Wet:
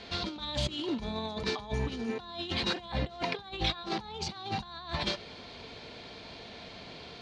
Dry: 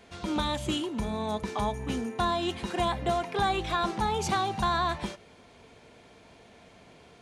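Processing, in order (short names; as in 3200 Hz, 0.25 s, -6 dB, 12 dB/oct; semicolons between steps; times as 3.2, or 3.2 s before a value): negative-ratio compressor -35 dBFS, ratio -0.5; synth low-pass 4300 Hz, resonance Q 3.7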